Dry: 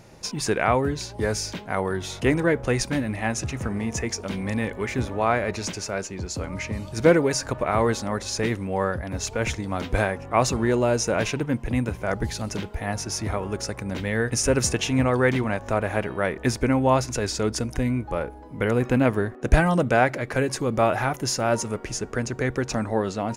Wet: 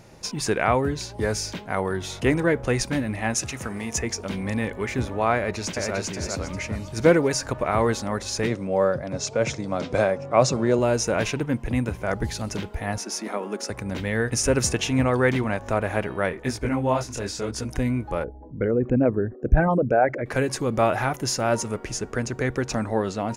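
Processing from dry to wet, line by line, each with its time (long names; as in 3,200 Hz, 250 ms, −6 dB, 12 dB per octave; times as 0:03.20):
0:03.34–0:03.98: spectral tilt +2 dB per octave
0:05.36–0:05.95: delay throw 400 ms, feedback 35%, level −2.5 dB
0:08.47–0:10.79: loudspeaker in its box 130–8,300 Hz, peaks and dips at 140 Hz +8 dB, 570 Hz +8 dB, 890 Hz −3 dB, 1,800 Hz −5 dB, 2,900 Hz −4 dB, 5,300 Hz +3 dB
0:12.98–0:13.70: elliptic high-pass filter 200 Hz
0:16.29–0:17.64: micro pitch shift up and down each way 27 cents → 44 cents
0:18.24–0:20.26: spectral envelope exaggerated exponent 2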